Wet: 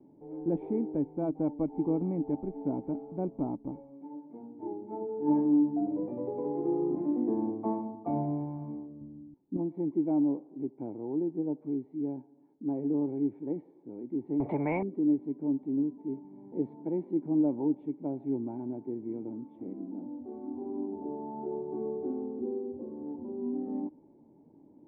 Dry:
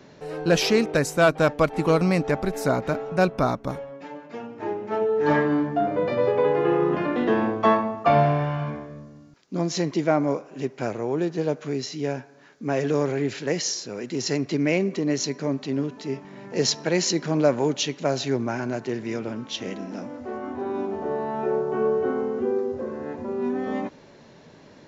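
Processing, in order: vocal tract filter u; 9.01–9.57 low shelf 210 Hz +11.5 dB; 14.4–14.83 spectral compressor 4:1

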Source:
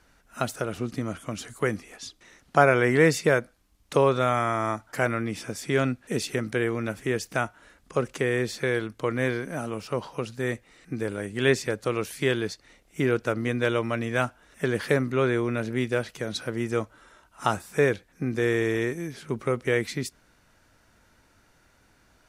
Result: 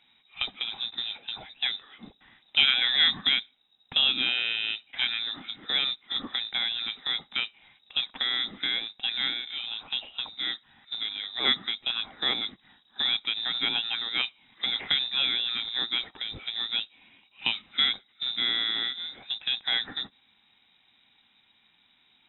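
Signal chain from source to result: short-mantissa float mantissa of 2-bit; inverted band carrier 3800 Hz; small resonant body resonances 230/780 Hz, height 9 dB, ringing for 25 ms; gain -3.5 dB

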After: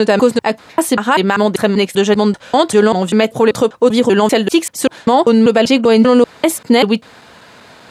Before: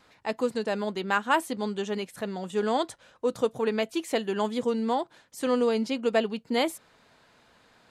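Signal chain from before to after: slices in reverse order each 0.195 s, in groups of 4; HPF 67 Hz; maximiser +20.5 dB; gain -1 dB

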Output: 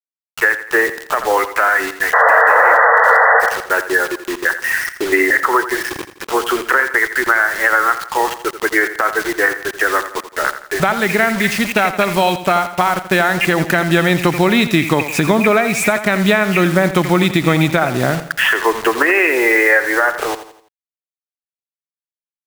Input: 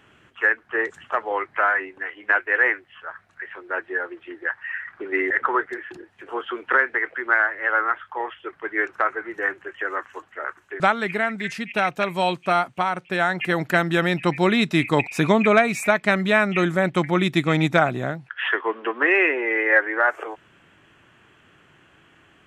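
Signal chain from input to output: requantised 6-bit, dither none; compressor, threshold -22 dBFS, peak gain reduction 11 dB; painted sound noise, 2.13–3.41, 440–2000 Hz -15 dBFS; on a send: feedback echo 84 ms, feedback 42%, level -12.5 dB; on the sum: maximiser +13.5 dB; gain -1 dB

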